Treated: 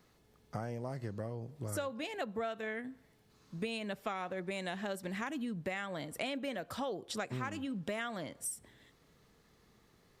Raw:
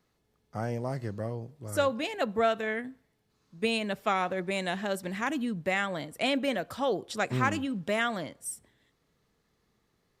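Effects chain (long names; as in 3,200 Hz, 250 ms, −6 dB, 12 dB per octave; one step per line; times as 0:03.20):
downward compressor 5 to 1, threshold −44 dBFS, peak gain reduction 20 dB
level +6.5 dB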